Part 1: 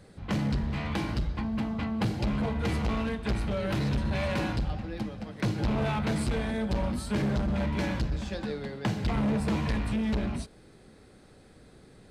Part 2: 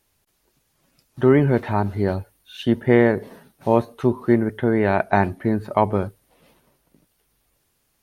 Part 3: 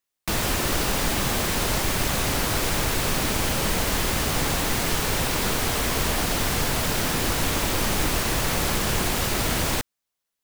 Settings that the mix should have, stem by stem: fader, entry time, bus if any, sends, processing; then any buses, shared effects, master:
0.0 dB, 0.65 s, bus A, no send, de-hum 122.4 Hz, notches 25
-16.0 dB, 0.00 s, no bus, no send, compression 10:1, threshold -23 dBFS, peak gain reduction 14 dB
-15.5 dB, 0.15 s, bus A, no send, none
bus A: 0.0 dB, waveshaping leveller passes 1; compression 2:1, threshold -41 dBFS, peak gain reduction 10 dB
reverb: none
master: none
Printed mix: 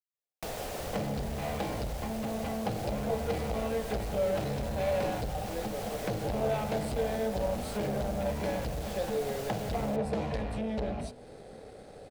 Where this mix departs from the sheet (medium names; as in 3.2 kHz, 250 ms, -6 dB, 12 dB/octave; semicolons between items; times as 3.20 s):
stem 2: muted; master: extra high-order bell 590 Hz +11 dB 1.1 oct